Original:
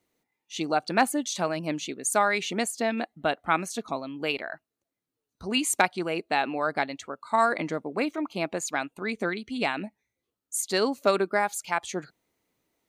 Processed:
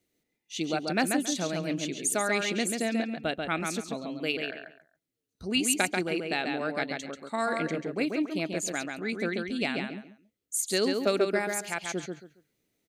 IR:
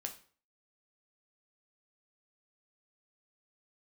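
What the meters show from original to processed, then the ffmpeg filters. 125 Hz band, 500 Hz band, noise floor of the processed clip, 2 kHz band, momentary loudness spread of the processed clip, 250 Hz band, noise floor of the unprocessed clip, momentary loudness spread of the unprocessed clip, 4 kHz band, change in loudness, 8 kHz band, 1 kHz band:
+1.0 dB, −2.0 dB, −84 dBFS, −2.0 dB, 9 LU, +1.0 dB, below −85 dBFS, 9 LU, 0.0 dB, −2.0 dB, +0.5 dB, −7.5 dB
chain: -filter_complex "[0:a]equalizer=frequency=980:width=1.4:gain=-13,asplit=2[link_01][link_02];[link_02]adelay=138,lowpass=frequency=4700:poles=1,volume=-4dB,asplit=2[link_03][link_04];[link_04]adelay=138,lowpass=frequency=4700:poles=1,volume=0.24,asplit=2[link_05][link_06];[link_06]adelay=138,lowpass=frequency=4700:poles=1,volume=0.24[link_07];[link_03][link_05][link_07]amix=inputs=3:normalize=0[link_08];[link_01][link_08]amix=inputs=2:normalize=0"

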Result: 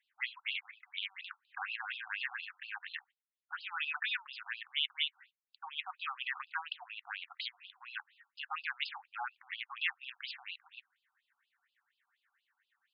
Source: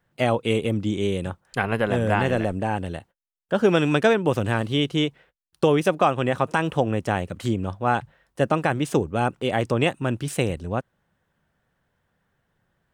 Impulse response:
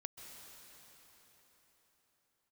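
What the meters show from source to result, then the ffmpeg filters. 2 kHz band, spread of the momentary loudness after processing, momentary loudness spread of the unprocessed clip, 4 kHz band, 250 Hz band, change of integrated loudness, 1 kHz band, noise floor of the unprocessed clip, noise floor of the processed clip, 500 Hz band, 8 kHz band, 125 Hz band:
−9.0 dB, 11 LU, 8 LU, −5.5 dB, below −40 dB, −16.0 dB, −19.5 dB, −74 dBFS, below −85 dBFS, below −40 dB, below −40 dB, below −40 dB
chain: -af "highshelf=frequency=7100:gain=7,alimiter=limit=-16.5dB:level=0:latency=1:release=36,equalizer=frequency=125:width_type=o:width=1:gain=-7,equalizer=frequency=2000:width_type=o:width=1:gain=10,equalizer=frequency=4000:width_type=o:width=1:gain=6,equalizer=frequency=8000:width_type=o:width=1:gain=10,afftfilt=real='re*between(b*sr/1024,980*pow(3700/980,0.5+0.5*sin(2*PI*4.2*pts/sr))/1.41,980*pow(3700/980,0.5+0.5*sin(2*PI*4.2*pts/sr))*1.41)':imag='im*between(b*sr/1024,980*pow(3700/980,0.5+0.5*sin(2*PI*4.2*pts/sr))/1.41,980*pow(3700/980,0.5+0.5*sin(2*PI*4.2*pts/sr))*1.41)':win_size=1024:overlap=0.75,volume=-7.5dB"

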